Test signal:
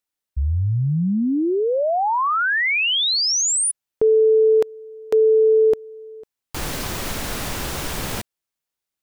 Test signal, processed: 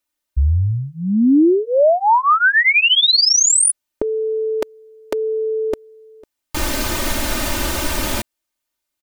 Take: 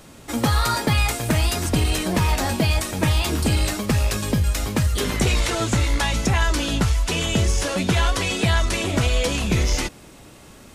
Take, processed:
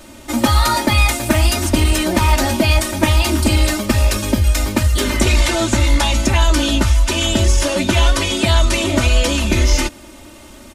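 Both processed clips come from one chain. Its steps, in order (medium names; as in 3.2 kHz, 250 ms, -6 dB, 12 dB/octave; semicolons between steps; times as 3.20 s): comb 3.3 ms, depth 98%; trim +3 dB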